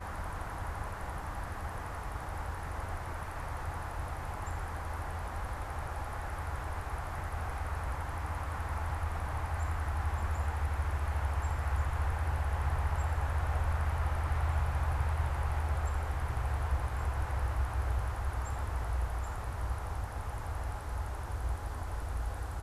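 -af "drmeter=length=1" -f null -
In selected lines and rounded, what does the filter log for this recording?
Channel 1: DR: 7.1
Overall DR: 7.1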